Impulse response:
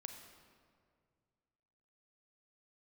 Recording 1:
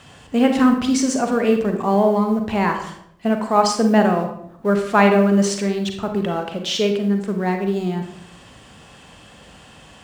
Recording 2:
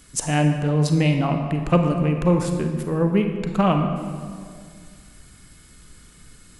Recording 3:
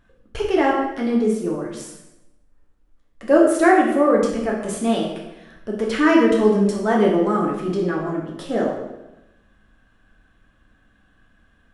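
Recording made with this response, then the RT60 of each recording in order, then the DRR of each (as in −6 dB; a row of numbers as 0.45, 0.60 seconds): 2; 0.70, 2.1, 0.95 seconds; 4.0, 5.0, −2.5 decibels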